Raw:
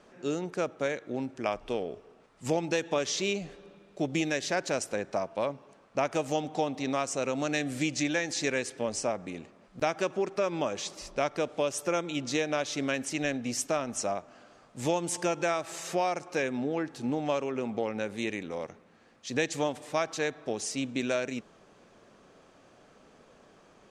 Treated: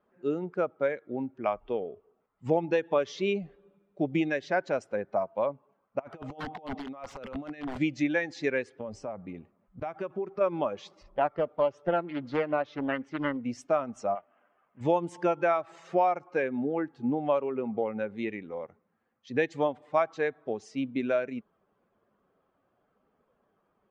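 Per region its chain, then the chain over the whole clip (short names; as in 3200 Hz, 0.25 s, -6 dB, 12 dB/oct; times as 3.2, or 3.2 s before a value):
5.99–7.78 LPF 6800 Hz + negative-ratio compressor -34 dBFS, ratio -0.5 + wrapped overs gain 27 dB
8.8–10.41 low shelf 120 Hz +7 dB + compressor 5:1, threshold -30 dBFS
11.03–13.45 gate with hold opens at -35 dBFS, closes at -43 dBFS + air absorption 110 m + Doppler distortion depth 0.51 ms
14.15–14.81 CVSD 16 kbps + upward compressor, threshold -52 dBFS + low shelf 130 Hz -12 dB
whole clip: per-bin expansion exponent 1.5; LPF 1500 Hz 12 dB/oct; tilt +1.5 dB/oct; gain +7 dB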